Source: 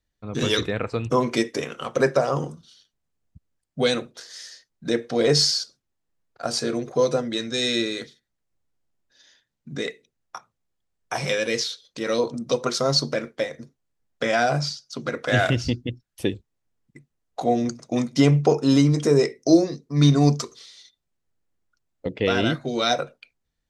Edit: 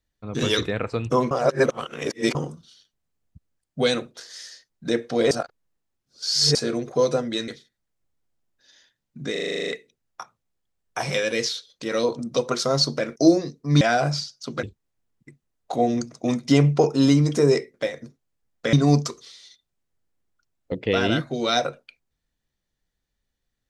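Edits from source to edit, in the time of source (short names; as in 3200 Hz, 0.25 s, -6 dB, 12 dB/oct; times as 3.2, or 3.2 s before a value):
1.31–2.35 reverse
5.31–6.55 reverse
7.48–7.99 cut
9.83 stutter 0.04 s, 10 plays
13.31–14.3 swap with 19.42–20.07
15.12–16.31 cut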